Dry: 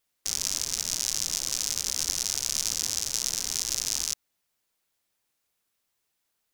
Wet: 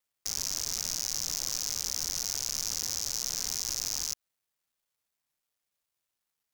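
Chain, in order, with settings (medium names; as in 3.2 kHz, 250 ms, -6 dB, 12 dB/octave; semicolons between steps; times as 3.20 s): companding laws mixed up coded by A; peaking EQ 300 Hz -3 dB 1 oct; in parallel at +0.5 dB: peak limiter -14 dBFS, peak gain reduction 9.5 dB; on the sum: hard clipper -17 dBFS, distortion -6 dB; trim -1.5 dB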